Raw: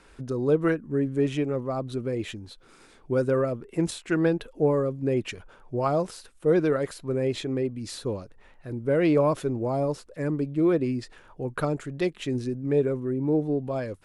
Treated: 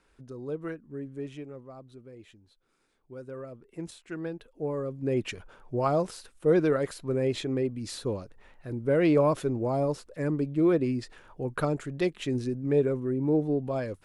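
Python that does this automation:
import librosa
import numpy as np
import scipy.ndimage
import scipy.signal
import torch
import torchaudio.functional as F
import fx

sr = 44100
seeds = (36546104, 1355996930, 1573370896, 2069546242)

y = fx.gain(x, sr, db=fx.line((1.17, -12.5), (2.06, -19.0), (3.13, -19.0), (3.71, -12.5), (4.48, -12.5), (5.22, -1.0)))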